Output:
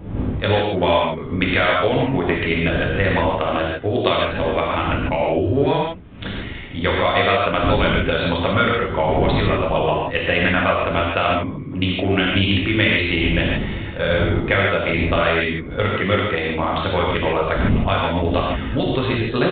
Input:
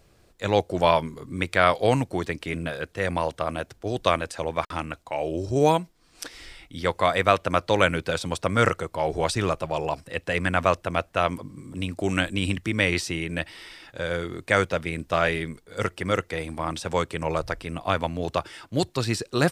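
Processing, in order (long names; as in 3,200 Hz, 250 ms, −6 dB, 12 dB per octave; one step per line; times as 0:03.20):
adaptive Wiener filter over 9 samples
wind on the microphone 200 Hz −34 dBFS
in parallel at −9 dB: gain into a clipping stage and back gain 16 dB
on the sum: downward compressor, threshold −22 dBFS, peak gain reduction 10.5 dB
high-shelf EQ 3,100 Hz +12 dB
reverb whose tail is shaped and stops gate 180 ms flat, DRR −3.5 dB
downsampling to 8,000 Hz
level +3 dB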